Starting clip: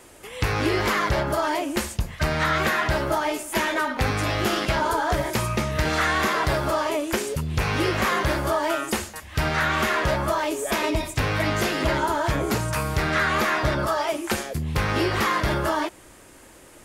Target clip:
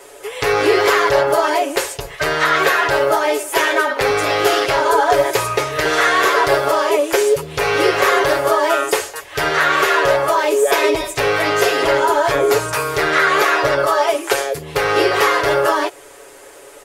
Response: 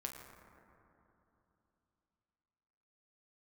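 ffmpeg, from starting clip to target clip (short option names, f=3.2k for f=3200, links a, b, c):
-af "lowshelf=f=310:t=q:w=3:g=-10.5,bandreject=f=50:t=h:w=6,bandreject=f=100:t=h:w=6,aecho=1:1:7.1:0.73,volume=5.5dB"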